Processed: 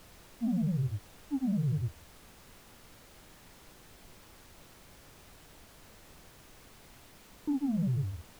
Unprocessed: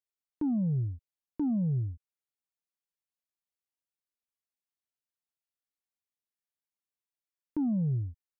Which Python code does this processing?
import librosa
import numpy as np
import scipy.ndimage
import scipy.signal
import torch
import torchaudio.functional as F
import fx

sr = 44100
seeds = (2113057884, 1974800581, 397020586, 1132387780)

y = fx.granulator(x, sr, seeds[0], grain_ms=100.0, per_s=20.0, spray_ms=100.0, spread_st=0)
y = fx.dmg_noise_colour(y, sr, seeds[1], colour='pink', level_db=-55.0)